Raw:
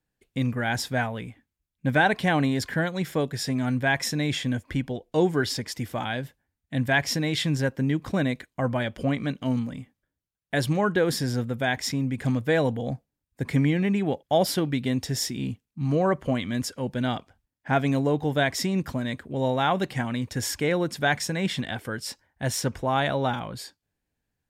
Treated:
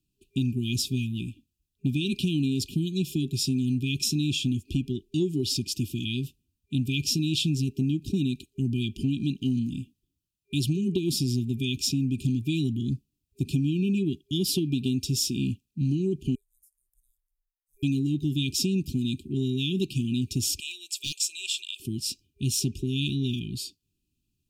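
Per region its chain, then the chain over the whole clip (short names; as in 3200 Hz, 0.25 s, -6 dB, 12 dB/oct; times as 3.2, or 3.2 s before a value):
16.35–17.83 inverse Chebyshev band-stop 100–3200 Hz, stop band 70 dB + high shelf 9700 Hz -9.5 dB + compressor 12:1, threshold -60 dBFS
20.6–21.8 elliptic high-pass 640 Hz, stop band 60 dB + bell 7600 Hz +11.5 dB 0.2 oct + hard clip -19.5 dBFS
whole clip: FFT band-reject 400–2400 Hz; compressor, threshold -26 dBFS; dynamic EQ 540 Hz, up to -4 dB, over -56 dBFS, Q 3.3; gain +4 dB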